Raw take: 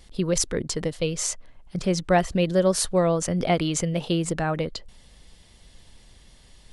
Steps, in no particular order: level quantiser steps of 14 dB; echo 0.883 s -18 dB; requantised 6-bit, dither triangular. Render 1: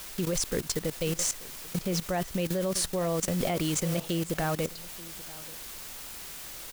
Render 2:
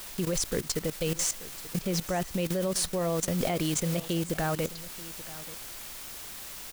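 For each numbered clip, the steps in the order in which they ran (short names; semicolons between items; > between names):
echo > requantised > level quantiser; requantised > level quantiser > echo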